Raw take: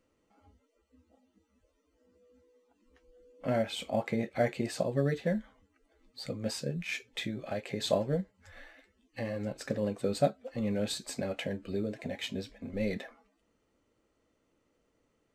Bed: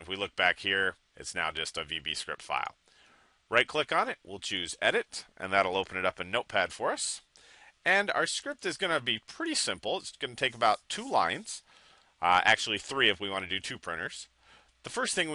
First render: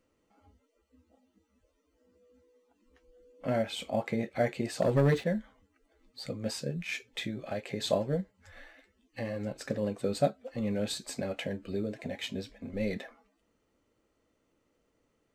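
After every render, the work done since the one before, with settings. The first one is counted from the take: 4.82–5.24 s: waveshaping leveller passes 2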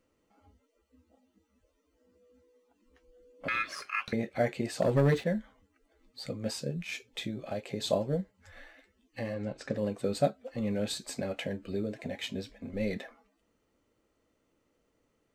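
3.48–4.13 s: ring modulator 1.9 kHz; 6.52–8.21 s: dynamic bell 1.8 kHz, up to -6 dB, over -53 dBFS, Q 1.8; 9.34–9.75 s: distance through air 71 m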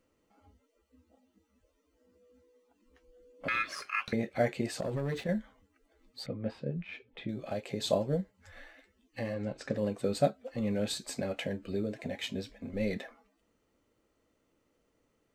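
4.76–5.29 s: compression 12:1, threshold -30 dBFS; 6.26–7.29 s: distance through air 460 m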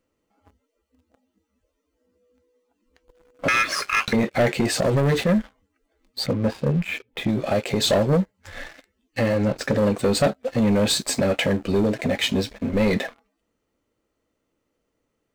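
in parallel at -2.5 dB: peak limiter -25 dBFS, peak gain reduction 11 dB; on the sum: waveshaping leveller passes 3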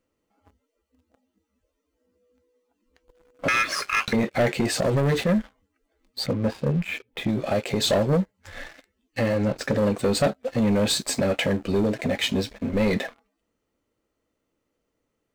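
trim -2 dB

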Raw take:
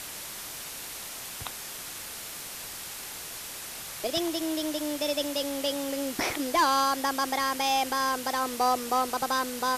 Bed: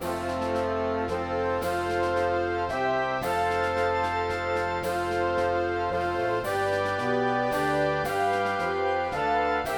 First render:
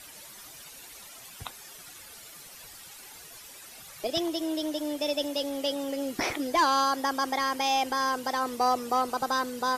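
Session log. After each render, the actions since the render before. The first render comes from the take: noise reduction 12 dB, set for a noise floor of -40 dBFS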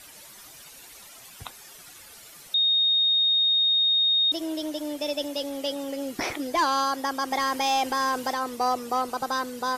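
2.54–4.32 s: bleep 3.71 kHz -18.5 dBFS; 7.31–8.34 s: waveshaping leveller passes 1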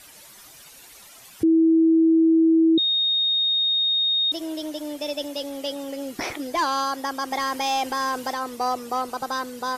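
1.43–2.78 s: bleep 325 Hz -13.5 dBFS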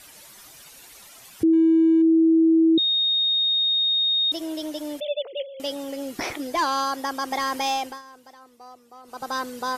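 1.53–2.02 s: median filter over 25 samples; 5.00–5.60 s: formants replaced by sine waves; 7.69–9.36 s: dip -20.5 dB, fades 0.33 s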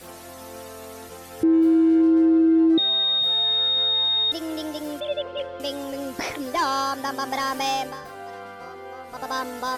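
add bed -12.5 dB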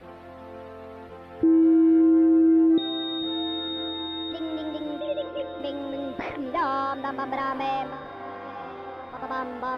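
distance through air 470 m; echo that smears into a reverb 973 ms, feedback 60%, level -13.5 dB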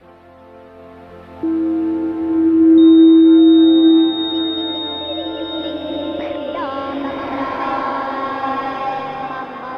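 swelling reverb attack 1310 ms, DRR -7 dB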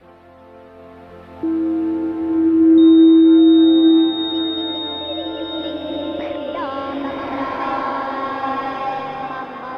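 trim -1.5 dB

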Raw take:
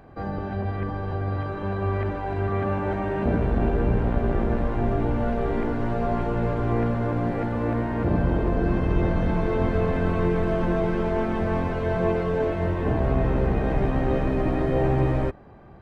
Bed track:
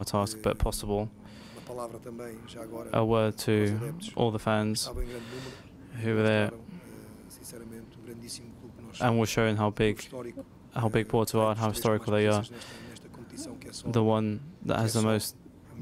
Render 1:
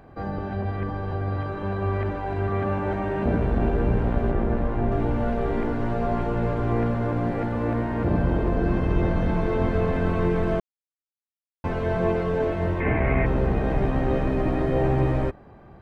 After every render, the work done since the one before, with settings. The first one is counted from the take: 4.31–4.92 s: treble shelf 3.7 kHz -8.5 dB; 10.60–11.64 s: mute; 12.80–13.26 s: resonant low-pass 2.2 kHz, resonance Q 9.7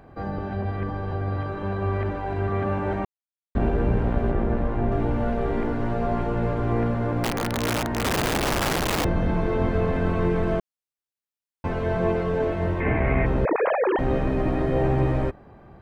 3.05–3.55 s: mute; 7.23–9.05 s: integer overflow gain 18.5 dB; 13.45–13.99 s: formants replaced by sine waves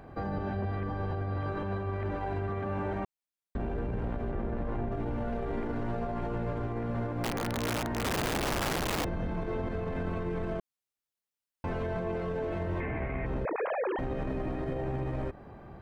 compression, threshold -24 dBFS, peak gain reduction 8 dB; peak limiter -25.5 dBFS, peak gain reduction 9.5 dB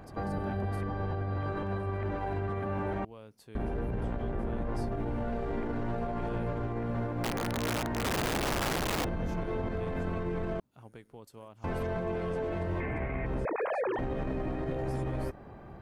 add bed track -24 dB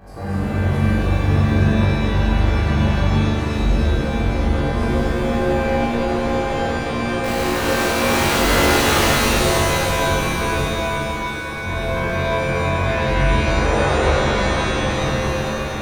flutter echo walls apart 3.6 m, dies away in 0.56 s; pitch-shifted reverb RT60 3.2 s, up +7 st, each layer -2 dB, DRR -8 dB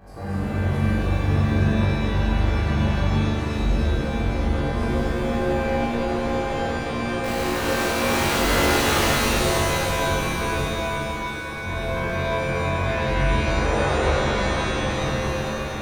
trim -4 dB

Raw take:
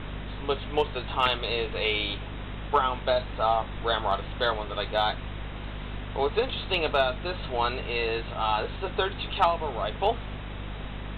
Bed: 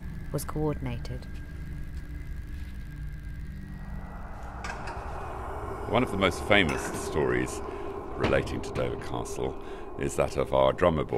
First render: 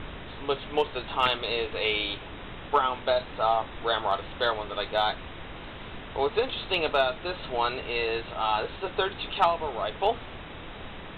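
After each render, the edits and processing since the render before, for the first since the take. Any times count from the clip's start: de-hum 50 Hz, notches 5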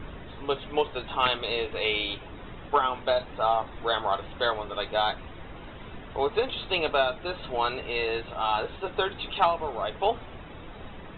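noise reduction 10 dB, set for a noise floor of -42 dBFS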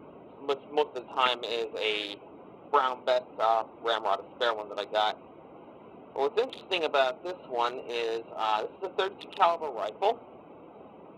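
local Wiener filter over 25 samples; high-pass 290 Hz 12 dB/octave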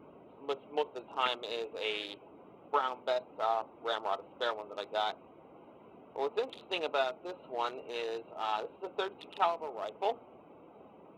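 trim -6 dB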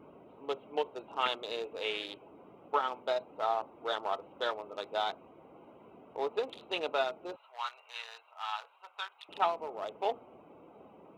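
7.36–9.29 s: high-pass 960 Hz 24 dB/octave

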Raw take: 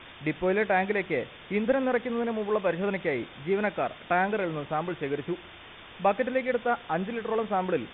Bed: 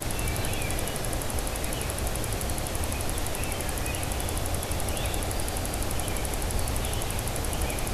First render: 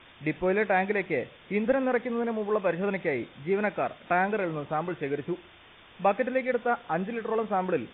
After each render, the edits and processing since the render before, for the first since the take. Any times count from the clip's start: noise print and reduce 6 dB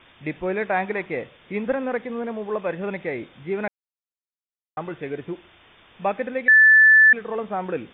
0.63–1.75 s: dynamic bell 1.1 kHz, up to +6 dB, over -42 dBFS, Q 1.9; 3.68–4.77 s: mute; 6.48–7.13 s: bleep 1.75 kHz -9 dBFS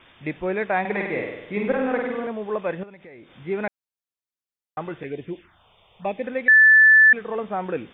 0.80–2.27 s: flutter echo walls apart 8.5 m, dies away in 0.92 s; 2.83–3.36 s: compression 4:1, threshold -44 dBFS; 5.03–6.24 s: touch-sensitive phaser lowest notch 240 Hz, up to 1.4 kHz, full sweep at -27 dBFS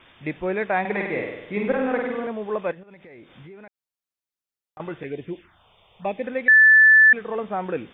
2.71–4.80 s: compression 12:1, threshold -40 dBFS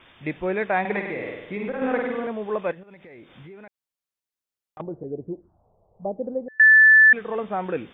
0.99–1.82 s: compression 4:1, threshold -26 dBFS; 4.81–6.60 s: inverse Chebyshev low-pass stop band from 2.4 kHz, stop band 60 dB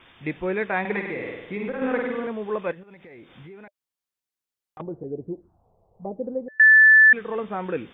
band-stop 600 Hz, Q 13; dynamic bell 730 Hz, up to -5 dB, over -43 dBFS, Q 4.1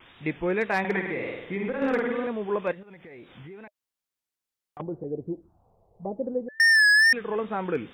wow and flutter 75 cents; overload inside the chain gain 16.5 dB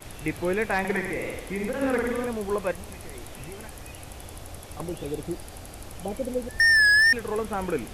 add bed -11.5 dB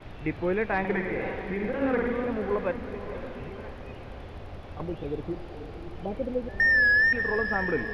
distance through air 310 m; echo that smears into a reverb 539 ms, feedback 48%, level -9.5 dB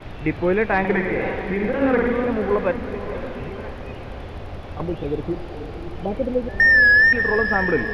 trim +7.5 dB

